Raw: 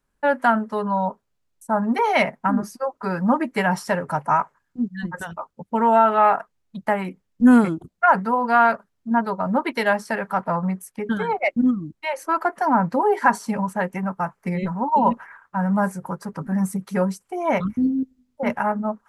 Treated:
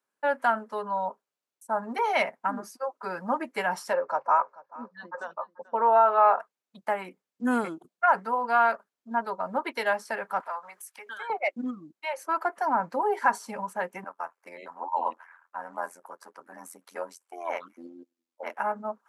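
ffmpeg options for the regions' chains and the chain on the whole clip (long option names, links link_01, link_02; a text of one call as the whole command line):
ffmpeg -i in.wav -filter_complex "[0:a]asettb=1/sr,asplit=3[link_01][link_02][link_03];[link_01]atrim=end=3.934[link_04];[link_02]atrim=start=3.93:end=6.4,asetpts=PTS-STARTPTS,afade=type=in:duration=0.004:curve=qsin,afade=type=out:start_time=2.466:duration=0.004:curve=qsin,highpass=280,equalizer=frequency=540:width_type=q:width=4:gain=9,equalizer=frequency=1100:width_type=q:width=4:gain=6,equalizer=frequency=2000:width_type=q:width=4:gain=-5,equalizer=frequency=3100:width_type=q:width=4:gain=-10,lowpass=frequency=5400:width=0.5412,lowpass=frequency=5400:width=1.3066,aecho=1:1:436|872:0.0891|0.0258,atrim=end_sample=108927[link_05];[link_03]atrim=start=6.396[link_06];[link_04][link_05]acrossfade=duration=0.004:curve1=hsin:curve2=qsin[link_07];[link_07][link_06]acrossfade=duration=0.004:curve1=qsin:curve2=hsin,asettb=1/sr,asplit=3[link_08][link_09][link_10];[link_08]atrim=end=10.404[link_11];[link_09]atrim=start=10.4:end=11.3,asetpts=PTS-STARTPTS,afade=type=in:duration=0.004:curve=qsin,afade=type=out:start_time=0.896:duration=0.004:curve=qsin,highpass=1000,acompressor=mode=upward:threshold=-32dB:ratio=2.5:attack=3.2:release=140:knee=2.83:detection=peak[link_12];[link_10]atrim=start=11.296[link_13];[link_11][link_12]acrossfade=duration=0.004:curve1=hsin:curve2=qsin[link_14];[link_14][link_13]acrossfade=duration=0.004:curve1=qsin:curve2=hsin,asettb=1/sr,asplit=3[link_15][link_16][link_17];[link_15]atrim=end=14.044[link_18];[link_16]atrim=start=14.04:end=18.59,asetpts=PTS-STARTPTS,afade=type=in:duration=0.004:curve=qsin,afade=type=out:start_time=4.546:duration=0.004:curve=qsin,tremolo=f=85:d=0.857,highpass=440[link_19];[link_17]atrim=start=18.586[link_20];[link_18][link_19]acrossfade=duration=0.004:curve1=hsin:curve2=qsin[link_21];[link_21][link_20]acrossfade=duration=0.004:curve1=qsin:curve2=hsin,highpass=400,bandreject=frequency=1900:width=24,volume=-5.5dB" out.wav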